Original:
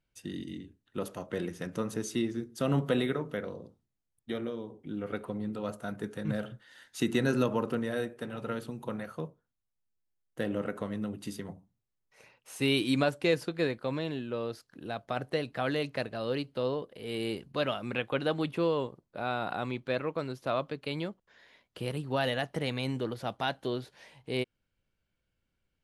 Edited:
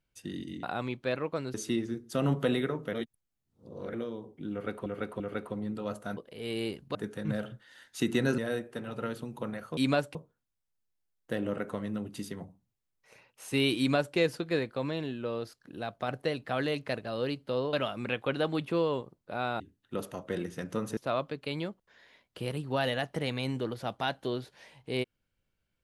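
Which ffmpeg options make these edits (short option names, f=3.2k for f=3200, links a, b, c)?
-filter_complex "[0:a]asplit=15[a][b][c][d][e][f][g][h][i][j][k][l][m][n][o];[a]atrim=end=0.632[p];[b]atrim=start=19.458:end=20.372[q];[c]atrim=start=1.998:end=3.392[r];[d]atrim=start=3.388:end=4.402,asetpts=PTS-STARTPTS,areverse[s];[e]atrim=start=4.398:end=5.322[t];[f]atrim=start=4.978:end=5.322[u];[g]atrim=start=4.978:end=5.952[v];[h]atrim=start=16.808:end=17.592[w];[i]atrim=start=5.948:end=7.382[x];[j]atrim=start=7.838:end=9.232[y];[k]atrim=start=12.858:end=13.242[z];[l]atrim=start=9.228:end=16.812[aa];[m]atrim=start=17.588:end=19.462[ab];[n]atrim=start=0.628:end=2.002[ac];[o]atrim=start=20.368[ad];[p][q]acrossfade=d=0.004:c1=hsin:c2=hsin[ae];[ae][r]acrossfade=d=0.004:c1=hsin:c2=hsin[af];[af][s]acrossfade=d=0.004:c1=hsin:c2=hsin[ag];[ag][t]acrossfade=d=0.004:c1=hsin:c2=hsin[ah];[ah][u]acrossfade=d=0.004:c1=hsin:c2=hsin[ai];[ai][v]acrossfade=d=0.004:c1=hsin:c2=hsin[aj];[aj][w]acrossfade=d=0.004:c1=hsin:c2=hsin[ak];[ak][x]acrossfade=d=0.004:c1=hsin:c2=hsin[al];[al][y]acrossfade=d=0.004:c1=hsin:c2=hsin[am];[am][z]acrossfade=d=0.004:c1=hsin:c2=hsin[an];[an][aa]acrossfade=d=0.004:c1=hsin:c2=hsin[ao];[ao][ab]acrossfade=d=0.004:c1=hsin:c2=hsin[ap];[ap][ac]acrossfade=d=0.004:c1=hsin:c2=hsin[aq];[aq][ad]acrossfade=d=0.004:c1=hsin:c2=hsin"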